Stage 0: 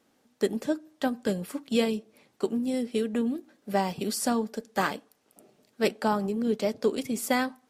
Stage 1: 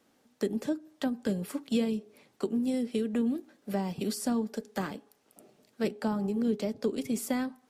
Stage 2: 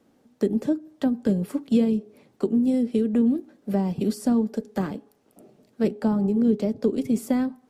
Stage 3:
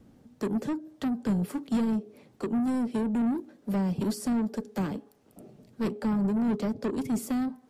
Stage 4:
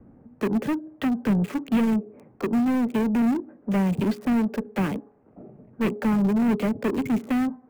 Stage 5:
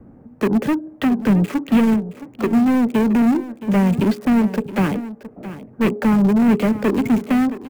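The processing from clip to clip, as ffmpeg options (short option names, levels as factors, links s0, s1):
-filter_complex "[0:a]bandreject=f=414.9:t=h:w=4,bandreject=f=829.8:t=h:w=4,acrossover=split=350[s0][s1];[s1]acompressor=threshold=0.0158:ratio=4[s2];[s0][s2]amix=inputs=2:normalize=0"
-af "tiltshelf=f=760:g=6,volume=1.5"
-filter_complex "[0:a]acrossover=split=170|4200[s0][s1][s2];[s0]acompressor=mode=upward:threshold=0.00501:ratio=2.5[s3];[s1]asoftclip=type=tanh:threshold=0.0376[s4];[s3][s4][s2]amix=inputs=3:normalize=0"
-filter_complex "[0:a]lowpass=f=2500:t=q:w=2.5,acrossover=split=280|1400[s0][s1][s2];[s2]acrusher=bits=7:mix=0:aa=0.000001[s3];[s0][s1][s3]amix=inputs=3:normalize=0,volume=1.78"
-af "aecho=1:1:670:0.188,volume=2.11"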